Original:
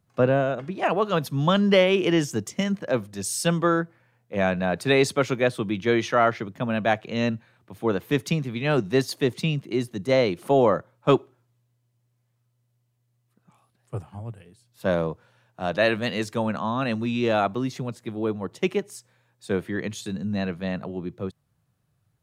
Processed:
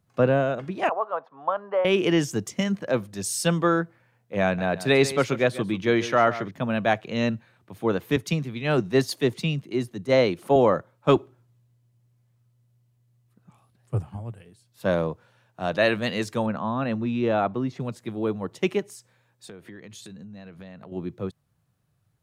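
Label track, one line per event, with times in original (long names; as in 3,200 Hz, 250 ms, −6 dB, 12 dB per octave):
0.890000	1.850000	flat-topped band-pass 860 Hz, Q 1.3
4.440000	6.510000	single-tap delay 140 ms −14.5 dB
8.160000	10.560000	multiband upward and downward expander depth 40%
11.160000	14.170000	low-shelf EQ 230 Hz +8.5 dB
16.460000	17.800000	low-pass filter 1,500 Hz 6 dB per octave
18.880000	20.920000	downward compressor 12 to 1, threshold −39 dBFS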